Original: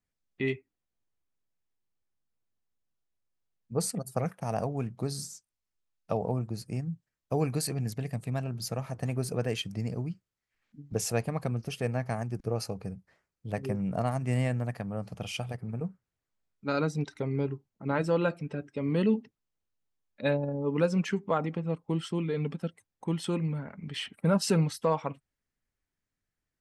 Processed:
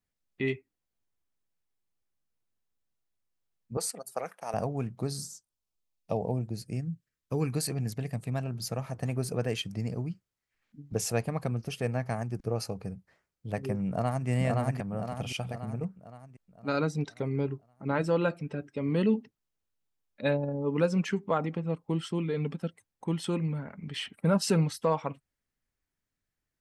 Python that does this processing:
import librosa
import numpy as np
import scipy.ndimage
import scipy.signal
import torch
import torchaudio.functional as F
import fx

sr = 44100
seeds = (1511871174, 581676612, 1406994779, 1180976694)

y = fx.highpass(x, sr, hz=500.0, slope=12, at=(3.77, 4.54))
y = fx.peak_eq(y, sr, hz=fx.line((5.17, 2500.0), (7.54, 610.0)), db=-14.0, octaves=0.48, at=(5.17, 7.54), fade=0.02)
y = fx.echo_throw(y, sr, start_s=13.88, length_s=0.4, ms=520, feedback_pct=50, wet_db=-1.0)